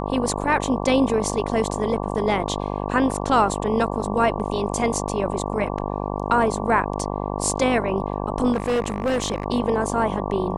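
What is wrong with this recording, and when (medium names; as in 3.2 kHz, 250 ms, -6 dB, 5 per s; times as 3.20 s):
buzz 50 Hz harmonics 23 -27 dBFS
8.52–9.46 s: clipped -18 dBFS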